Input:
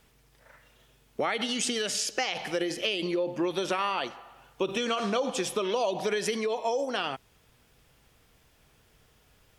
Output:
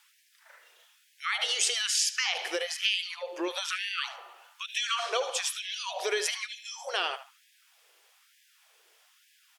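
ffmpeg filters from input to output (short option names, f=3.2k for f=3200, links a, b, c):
-filter_complex "[0:a]aemphasis=mode=reproduction:type=75kf,crystalizer=i=8:c=0,asplit=2[a][b];[b]adelay=75,lowpass=f=3.6k:p=1,volume=-11dB,asplit=2[c][d];[d]adelay=75,lowpass=f=3.6k:p=1,volume=0.31,asplit=2[e][f];[f]adelay=75,lowpass=f=3.6k:p=1,volume=0.31[g];[c][e][g]amix=inputs=3:normalize=0[h];[a][h]amix=inputs=2:normalize=0,afftfilt=real='re*gte(b*sr/1024,310*pow(1600/310,0.5+0.5*sin(2*PI*1.1*pts/sr)))':imag='im*gte(b*sr/1024,310*pow(1600/310,0.5+0.5*sin(2*PI*1.1*pts/sr)))':win_size=1024:overlap=0.75,volume=-3.5dB"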